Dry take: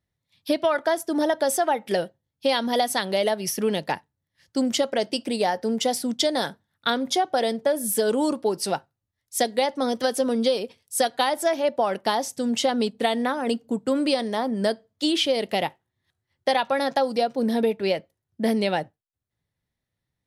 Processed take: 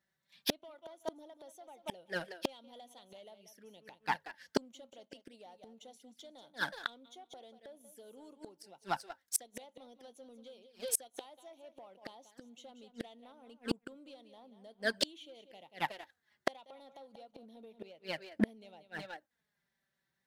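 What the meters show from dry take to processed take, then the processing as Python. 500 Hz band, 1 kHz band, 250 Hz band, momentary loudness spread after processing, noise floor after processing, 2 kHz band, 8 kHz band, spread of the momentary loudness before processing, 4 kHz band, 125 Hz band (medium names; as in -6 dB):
-22.0 dB, -18.5 dB, -19.0 dB, 19 LU, -85 dBFS, -11.5 dB, -11.5 dB, 6 LU, -16.5 dB, -13.5 dB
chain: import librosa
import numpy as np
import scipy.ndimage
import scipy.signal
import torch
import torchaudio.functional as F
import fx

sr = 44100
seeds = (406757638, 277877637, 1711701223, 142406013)

y = fx.graphic_eq_31(x, sr, hz=(400, 1600, 10000), db=(-3, 10, -4))
y = fx.echo_feedback(y, sr, ms=185, feedback_pct=19, wet_db=-11.5)
y = fx.env_flanger(y, sr, rest_ms=5.2, full_db=-22.5)
y = fx.highpass(y, sr, hz=310.0, slope=6)
y = fx.leveller(y, sr, passes=1)
y = fx.gate_flip(y, sr, shuts_db=-21.0, range_db=-37)
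y = y * 10.0 ** (5.5 / 20.0)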